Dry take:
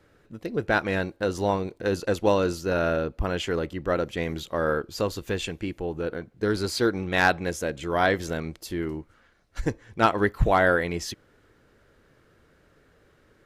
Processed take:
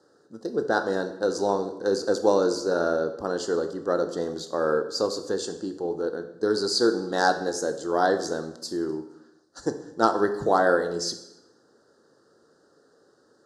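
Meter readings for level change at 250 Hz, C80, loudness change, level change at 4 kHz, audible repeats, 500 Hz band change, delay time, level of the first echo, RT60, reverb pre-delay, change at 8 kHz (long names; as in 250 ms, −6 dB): 0.0 dB, 14.0 dB, +0.5 dB, +2.5 dB, no echo audible, +2.0 dB, no echo audible, no echo audible, 0.85 s, 17 ms, +4.0 dB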